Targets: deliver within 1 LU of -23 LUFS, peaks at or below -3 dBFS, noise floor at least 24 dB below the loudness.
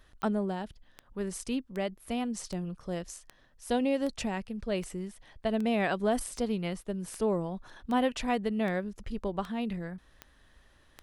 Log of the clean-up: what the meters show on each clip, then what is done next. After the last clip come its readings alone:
clicks 15; loudness -33.0 LUFS; peak -16.0 dBFS; loudness target -23.0 LUFS
-> de-click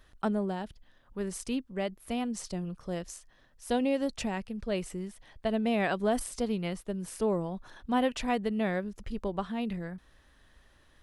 clicks 0; loudness -33.0 LUFS; peak -16.0 dBFS; loudness target -23.0 LUFS
-> gain +10 dB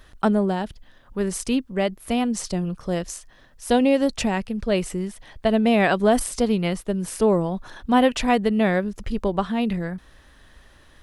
loudness -23.0 LUFS; peak -6.0 dBFS; noise floor -53 dBFS

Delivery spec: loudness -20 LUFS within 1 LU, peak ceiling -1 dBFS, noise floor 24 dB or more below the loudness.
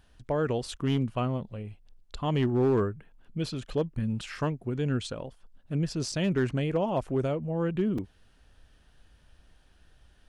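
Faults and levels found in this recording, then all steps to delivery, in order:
clipped 0.4%; flat tops at -19.0 dBFS; dropouts 2; longest dropout 4.1 ms; loudness -30.0 LUFS; peak -19.0 dBFS; loudness target -20.0 LUFS
-> clip repair -19 dBFS; interpolate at 6.12/7.98, 4.1 ms; gain +10 dB

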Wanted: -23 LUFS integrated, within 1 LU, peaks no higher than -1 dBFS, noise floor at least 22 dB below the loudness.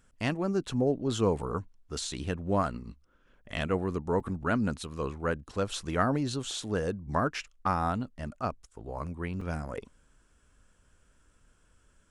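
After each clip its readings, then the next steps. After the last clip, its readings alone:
dropouts 2; longest dropout 4.2 ms; loudness -32.0 LUFS; peak -12.0 dBFS; loudness target -23.0 LUFS
-> interpolate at 4.2/9.41, 4.2 ms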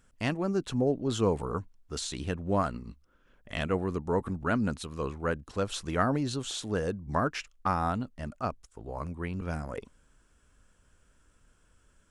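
dropouts 0; loudness -32.0 LUFS; peak -12.0 dBFS; loudness target -23.0 LUFS
-> gain +9 dB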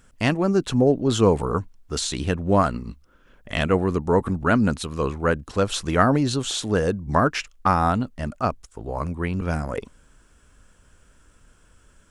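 loudness -23.0 LUFS; peak -3.0 dBFS; noise floor -57 dBFS

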